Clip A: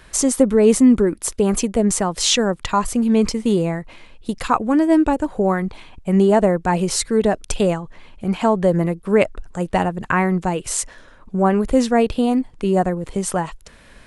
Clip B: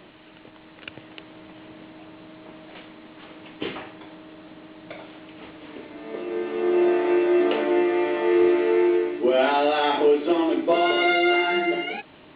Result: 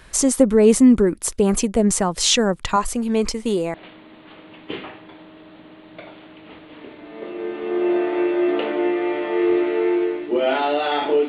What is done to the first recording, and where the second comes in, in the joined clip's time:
clip A
2.76–3.74 s: peaking EQ 140 Hz -13 dB 1.2 oct
3.74 s: go over to clip B from 2.66 s

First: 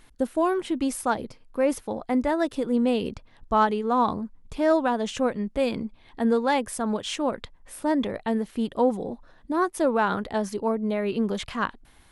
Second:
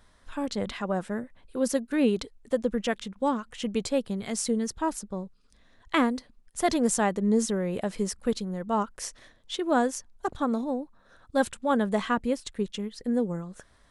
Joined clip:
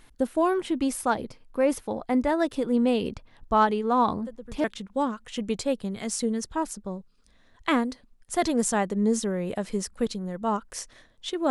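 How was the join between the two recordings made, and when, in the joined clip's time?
first
4.23 s: add second from 2.49 s 0.41 s -15 dB
4.64 s: go over to second from 2.90 s

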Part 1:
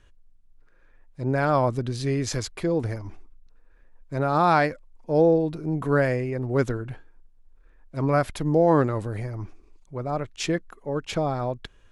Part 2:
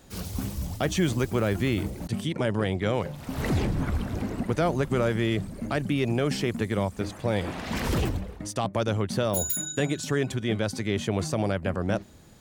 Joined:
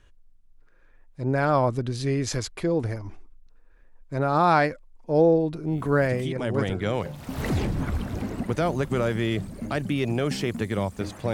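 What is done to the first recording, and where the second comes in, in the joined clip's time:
part 1
6.41 s: go over to part 2 from 2.41 s, crossfade 1.52 s equal-power

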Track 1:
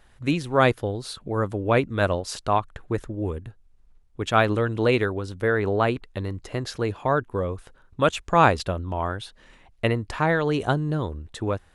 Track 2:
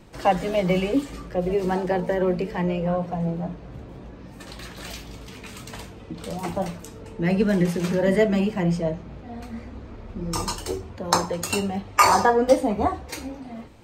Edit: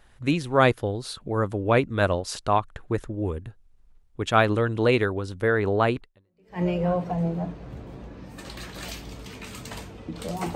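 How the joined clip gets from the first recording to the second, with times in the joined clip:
track 1
6.31 s: go over to track 2 from 2.33 s, crossfade 0.62 s exponential

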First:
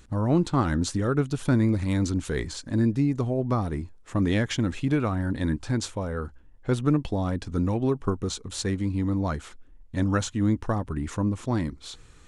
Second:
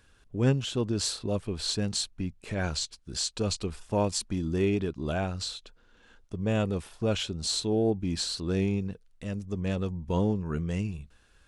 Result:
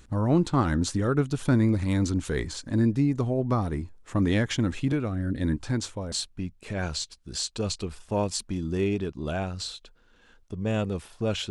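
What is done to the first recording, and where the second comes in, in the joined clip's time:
first
4.92–6.12 s: rotary cabinet horn 1 Hz
6.12 s: go over to second from 1.93 s

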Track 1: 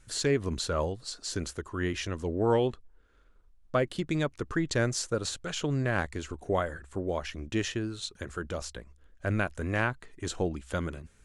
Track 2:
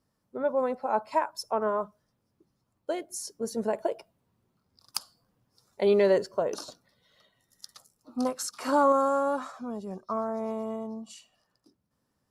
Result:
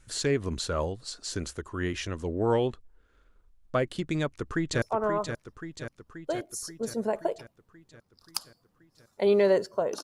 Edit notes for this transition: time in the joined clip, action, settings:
track 1
4.20–4.82 s: echo throw 530 ms, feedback 65%, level -7.5 dB
4.82 s: go over to track 2 from 1.42 s

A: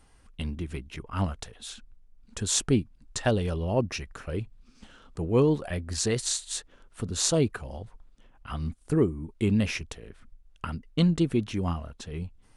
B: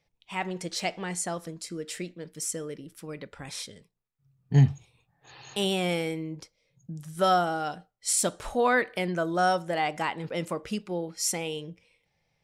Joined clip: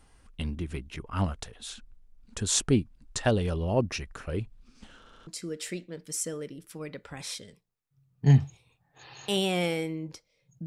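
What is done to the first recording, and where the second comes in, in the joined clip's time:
A
4.99 s: stutter in place 0.07 s, 4 plays
5.27 s: go over to B from 1.55 s

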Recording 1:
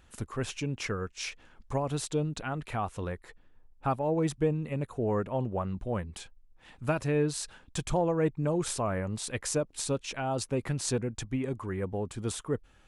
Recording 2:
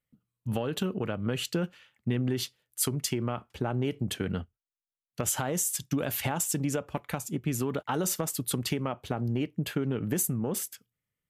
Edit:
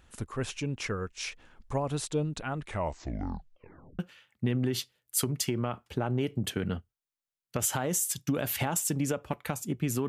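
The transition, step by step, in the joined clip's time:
recording 1
2.58 s: tape stop 1.41 s
3.99 s: go over to recording 2 from 1.63 s

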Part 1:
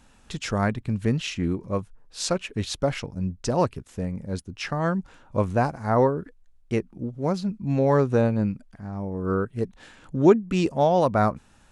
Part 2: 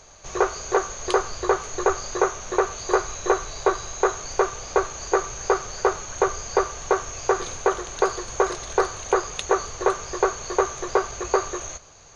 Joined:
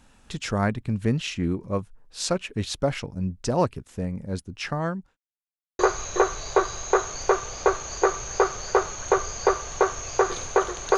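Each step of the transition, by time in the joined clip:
part 1
4.73–5.17 s: fade out linear
5.17–5.79 s: mute
5.79 s: go over to part 2 from 2.89 s

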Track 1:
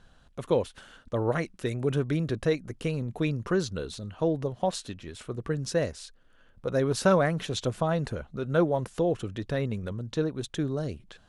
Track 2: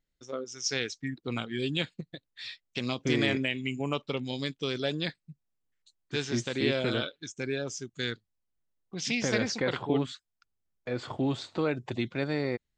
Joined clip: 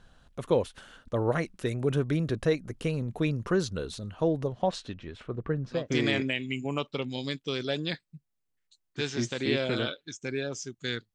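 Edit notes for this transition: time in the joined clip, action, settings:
track 1
4.48–5.88 s: low-pass 7 kHz -> 1.4 kHz
5.79 s: go over to track 2 from 2.94 s, crossfade 0.18 s

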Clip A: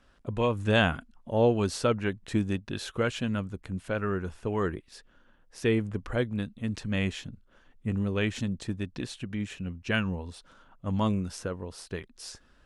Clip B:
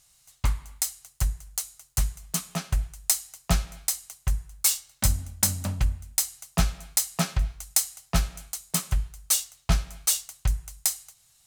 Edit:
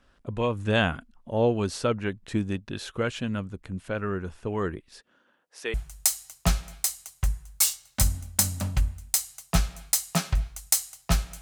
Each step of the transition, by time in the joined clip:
clip A
4.99–5.74 s: high-pass 160 Hz -> 670 Hz
5.74 s: go over to clip B from 2.78 s

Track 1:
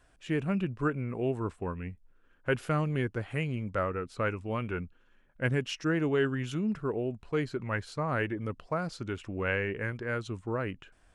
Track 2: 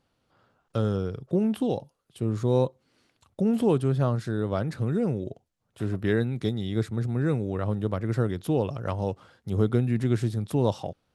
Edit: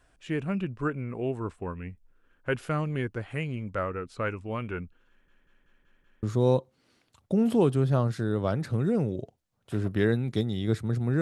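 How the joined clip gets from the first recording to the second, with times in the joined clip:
track 1
5.09 s: stutter in place 0.19 s, 6 plays
6.23 s: go over to track 2 from 2.31 s

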